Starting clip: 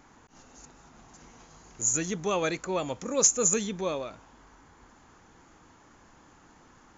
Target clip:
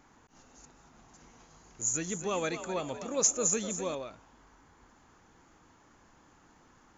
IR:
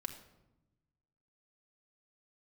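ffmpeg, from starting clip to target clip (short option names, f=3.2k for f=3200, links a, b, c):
-filter_complex "[0:a]asettb=1/sr,asplit=3[a][b][c];[a]atrim=end=1.814[d];[b]atrim=start=1.81:end=3.95,asetpts=PTS-STARTPTS,afade=t=in:d=0.004:c=qsin,afade=t=out:st=2.136:d=0.004:c=qsin,asplit=6[e][f][g][h][i][j];[f]adelay=251,afreqshift=53,volume=-11dB[k];[g]adelay=502,afreqshift=106,volume=-18.1dB[l];[h]adelay=753,afreqshift=159,volume=-25.3dB[m];[i]adelay=1004,afreqshift=212,volume=-32.4dB[n];[j]adelay=1255,afreqshift=265,volume=-39.5dB[o];[e][k][l][m][n][o]amix=inputs=6:normalize=0,atrim=end_sample=94374[p];[c]atrim=start=3.946[q];[d][p]acrossfade=d=0.004:c1=hsin:c2=qsin[r];[r][q]acrossfade=d=0.004:c1=qsin:c2=hsin,volume=-4.5dB"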